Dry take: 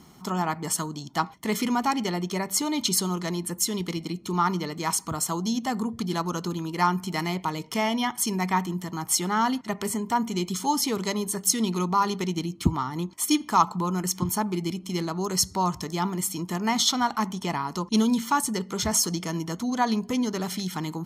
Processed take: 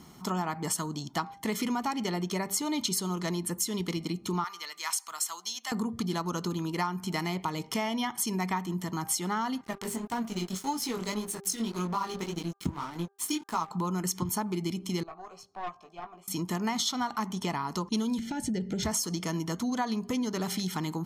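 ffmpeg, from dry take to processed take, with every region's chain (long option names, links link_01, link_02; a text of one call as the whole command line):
ffmpeg -i in.wav -filter_complex "[0:a]asettb=1/sr,asplit=3[link_01][link_02][link_03];[link_01]atrim=end=4.444[link_04];[link_02]atrim=start=4.44:end=5.72,asetpts=PTS-STARTPTS,afade=type=in:duration=0.004:curve=qsin,afade=type=out:start_time=1.276:duration=0.004:curve=qsin,highpass=1500,acrusher=bits=8:mode=log:mix=0:aa=0.000001[link_05];[link_03]atrim=start=5.716[link_06];[link_04][link_05]acrossfade=duration=0.004:curve1=hsin:curve2=qsin[link_07];[link_07][link_06]acrossfade=duration=0.004:curve1=qsin:curve2=hsin,asettb=1/sr,asplit=3[link_08][link_09][link_10];[link_08]atrim=end=9.644[link_11];[link_09]atrim=start=9.64:end=13.71,asetpts=PTS-STARTPTS,afade=type=in:duration=0.004:curve=qsin,afade=type=out:start_time=4.066:duration=0.004:curve=qsin,flanger=delay=17:depth=5.3:speed=1.8,aeval=exprs='sgn(val(0))*max(abs(val(0))-0.00891,0)':channel_layout=same[link_12];[link_10]atrim=start=13.706[link_13];[link_11][link_12]acrossfade=duration=0.004:curve1=hsin:curve2=qsin[link_14];[link_14][link_13]acrossfade=duration=0.004:curve1=qsin:curve2=hsin,asettb=1/sr,asplit=3[link_15][link_16][link_17];[link_15]atrim=end=15.034[link_18];[link_16]atrim=start=15.03:end=16.28,asetpts=PTS-STARTPTS,afade=type=in:duration=0.004:curve=qsin,afade=type=out:start_time=1.246:duration=0.004:curve=qsin,asplit=3[link_19][link_20][link_21];[link_19]bandpass=frequency=730:width_type=q:width=8,volume=0dB[link_22];[link_20]bandpass=frequency=1090:width_type=q:width=8,volume=-6dB[link_23];[link_21]bandpass=frequency=2440:width_type=q:width=8,volume=-9dB[link_24];[link_22][link_23][link_24]amix=inputs=3:normalize=0,asplit=2[link_25][link_26];[link_26]adelay=18,volume=-6dB[link_27];[link_25][link_27]amix=inputs=2:normalize=0,atrim=end_sample=55125,aeval=exprs='(tanh(31.6*val(0)+0.6)-tanh(0.6))/31.6':channel_layout=same[link_28];[link_17]atrim=start=16.276[link_29];[link_18][link_28]acrossfade=duration=0.004:curve1=hsin:curve2=qsin[link_30];[link_30][link_29]acrossfade=duration=0.004:curve1=qsin:curve2=hsin,asettb=1/sr,asplit=3[link_31][link_32][link_33];[link_31]atrim=end=18.194[link_34];[link_32]atrim=start=18.19:end=18.83,asetpts=PTS-STARTPTS,afade=type=in:duration=0.004:curve=qsin,afade=type=out:start_time=0.636:duration=0.004:curve=qsin,aemphasis=mode=reproduction:type=bsi,acompressor=threshold=-25dB:ratio=4:attack=3.2:release=140:knee=1:detection=peak,asuperstop=centerf=1100:order=4:qfactor=1.4[link_35];[link_33]atrim=start=18.826[link_36];[link_34][link_35]acrossfade=duration=0.004:curve1=hsin:curve2=qsin[link_37];[link_37][link_36]acrossfade=duration=0.004:curve1=qsin:curve2=hsin,bandreject=frequency=397.5:width_type=h:width=4,bandreject=frequency=795:width_type=h:width=4,bandreject=frequency=1192.5:width_type=h:width=4,bandreject=frequency=1590:width_type=h:width=4,acompressor=threshold=-27dB:ratio=6" out.wav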